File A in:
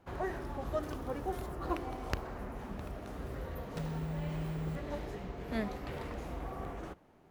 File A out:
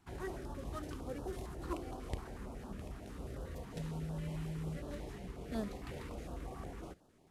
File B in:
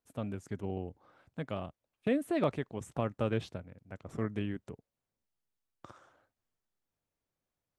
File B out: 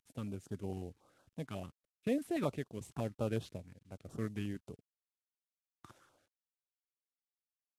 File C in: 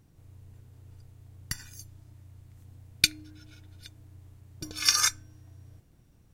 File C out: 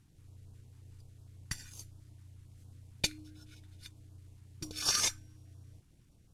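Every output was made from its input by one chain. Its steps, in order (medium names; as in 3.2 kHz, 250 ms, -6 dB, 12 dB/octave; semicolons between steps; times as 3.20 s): CVSD coder 64 kbps; step-sequenced notch 11 Hz 550–2100 Hz; trim -3 dB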